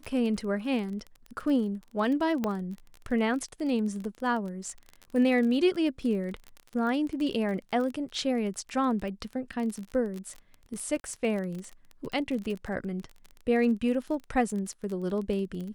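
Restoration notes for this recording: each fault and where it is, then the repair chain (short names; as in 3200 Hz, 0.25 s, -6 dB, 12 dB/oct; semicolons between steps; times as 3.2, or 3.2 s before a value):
crackle 30/s -34 dBFS
2.44 pop -16 dBFS
11–11.04 gap 41 ms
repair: de-click; interpolate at 11, 41 ms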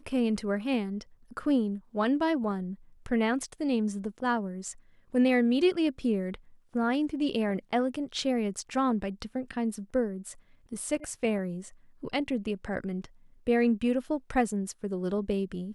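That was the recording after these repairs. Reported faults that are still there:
2.44 pop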